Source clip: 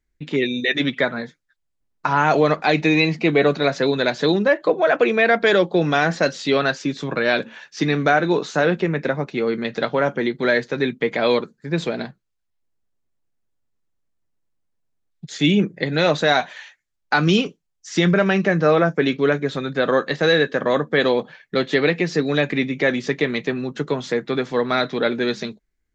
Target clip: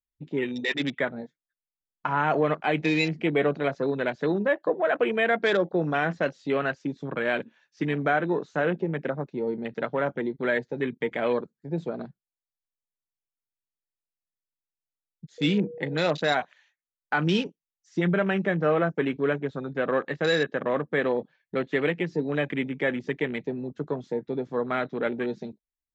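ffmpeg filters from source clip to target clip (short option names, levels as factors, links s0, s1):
-filter_complex "[0:a]afwtdn=0.0447,asettb=1/sr,asplit=3[s0][s1][s2];[s0]atrim=end=15.384[s3];[s1]atrim=start=15.38:end=15.98,asetpts=PTS-STARTPTS,afade=t=in:d=0.004:c=qsin,afade=t=out:st=0.596:d=0.004:c=qsin,aeval=exprs='val(0)+0.0316*sin(2*PI*480*n/s)':c=same[s4];[s2]atrim=start=15.976[s5];[s3][s4]acrossfade=d=0.004:c1=hsin:c2=qsin[s6];[s6][s5]acrossfade=d=0.004:c1=qsin:c2=hsin,volume=0.447"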